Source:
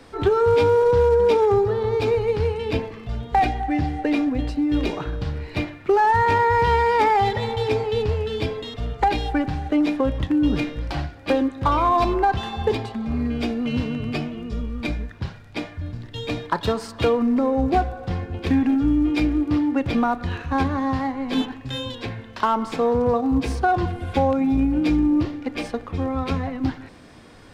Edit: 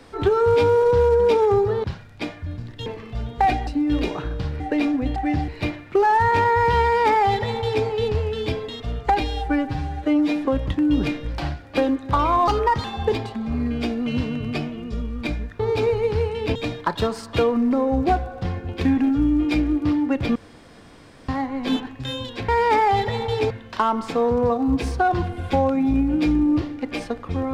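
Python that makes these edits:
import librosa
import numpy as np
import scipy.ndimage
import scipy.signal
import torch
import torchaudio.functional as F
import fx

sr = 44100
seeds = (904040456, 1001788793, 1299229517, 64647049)

y = fx.edit(x, sr, fx.swap(start_s=1.84, length_s=0.96, other_s=15.19, other_length_s=1.02),
    fx.swap(start_s=3.61, length_s=0.32, other_s=4.49, other_length_s=0.93),
    fx.duplicate(start_s=6.77, length_s=1.02, to_s=22.14),
    fx.stretch_span(start_s=9.15, length_s=0.83, factor=1.5),
    fx.speed_span(start_s=12.0, length_s=0.44, speed=1.19),
    fx.room_tone_fill(start_s=20.01, length_s=0.93), tone=tone)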